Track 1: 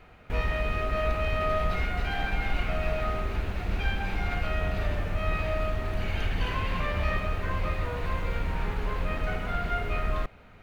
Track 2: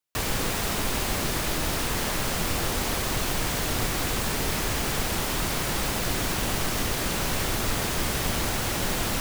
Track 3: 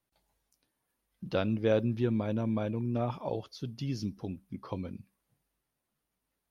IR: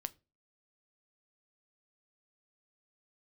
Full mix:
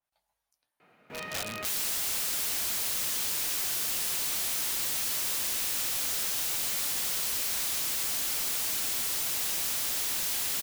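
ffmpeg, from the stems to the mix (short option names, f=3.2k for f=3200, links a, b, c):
-filter_complex "[0:a]highpass=f=160:w=0.5412,highpass=f=160:w=1.3066,bandreject=f=3.3k:w=24,adelay=800,volume=-7dB,asplit=3[a][b][c];[a]atrim=end=5.41,asetpts=PTS-STARTPTS,afade=t=out:st=5.406:d=0.004:c=hsin[d];[b]atrim=start=5.41:end=7.13,asetpts=PTS-STARTPTS,volume=0[e];[c]atrim=start=7.13,asetpts=PTS-STARTPTS,afade=t=in:d=0.004:c=hsin[f];[d][e][f]concat=n=3:v=0:a=1[g];[1:a]equalizer=f=1.4k:t=o:w=0.58:g=7,adelay=1500,volume=1.5dB[h];[2:a]lowshelf=f=510:t=q:w=1.5:g=-10,volume=-6.5dB,asplit=2[i][j];[j]volume=-5dB[k];[3:a]atrim=start_sample=2205[l];[k][l]afir=irnorm=-1:irlink=0[m];[g][h][i][m]amix=inputs=4:normalize=0,aeval=exprs='(mod(33.5*val(0)+1,2)-1)/33.5':c=same,adynamicequalizer=threshold=0.00251:dfrequency=2300:dqfactor=0.7:tfrequency=2300:tqfactor=0.7:attack=5:release=100:ratio=0.375:range=2.5:mode=boostabove:tftype=highshelf"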